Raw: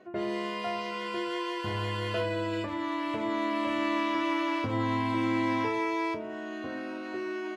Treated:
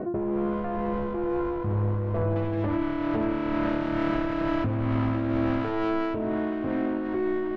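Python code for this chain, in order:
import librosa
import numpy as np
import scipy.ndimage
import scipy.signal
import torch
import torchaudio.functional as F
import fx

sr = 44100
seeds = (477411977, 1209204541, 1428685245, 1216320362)

y = fx.self_delay(x, sr, depth_ms=0.57)
y = fx.tilt_eq(y, sr, slope=-3.5)
y = y + 10.0 ** (-21.0 / 20.0) * np.pad(y, (int(719 * sr / 1000.0), 0))[:len(y)]
y = y * (1.0 - 0.71 / 2.0 + 0.71 / 2.0 * np.cos(2.0 * np.pi * 2.2 * (np.arange(len(y)) / sr)))
y = fx.lowpass(y, sr, hz=fx.steps((0.0, 1100.0), (2.36, 2500.0)), slope=12)
y = fx.env_flatten(y, sr, amount_pct=70)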